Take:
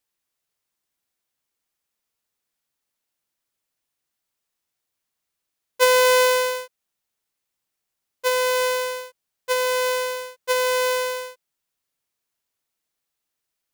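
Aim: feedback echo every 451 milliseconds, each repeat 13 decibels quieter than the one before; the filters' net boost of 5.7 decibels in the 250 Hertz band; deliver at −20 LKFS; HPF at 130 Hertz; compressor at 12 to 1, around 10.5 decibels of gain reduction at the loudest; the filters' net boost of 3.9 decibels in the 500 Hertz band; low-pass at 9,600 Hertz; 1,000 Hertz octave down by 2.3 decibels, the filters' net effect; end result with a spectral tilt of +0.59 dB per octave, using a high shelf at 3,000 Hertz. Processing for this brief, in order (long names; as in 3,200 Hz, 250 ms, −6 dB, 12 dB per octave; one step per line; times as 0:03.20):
high-pass filter 130 Hz
low-pass filter 9,600 Hz
parametric band 250 Hz +7.5 dB
parametric band 500 Hz +3 dB
parametric band 1,000 Hz −4 dB
high-shelf EQ 3,000 Hz +9 dB
downward compressor 12 to 1, threshold −20 dBFS
repeating echo 451 ms, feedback 22%, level −13 dB
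level +4.5 dB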